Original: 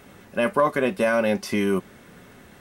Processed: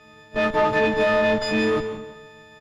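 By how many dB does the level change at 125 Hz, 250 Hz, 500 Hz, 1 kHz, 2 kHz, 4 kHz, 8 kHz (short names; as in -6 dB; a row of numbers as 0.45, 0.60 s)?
0.0, 0.0, +2.0, +2.5, +4.0, +6.0, -3.5 dB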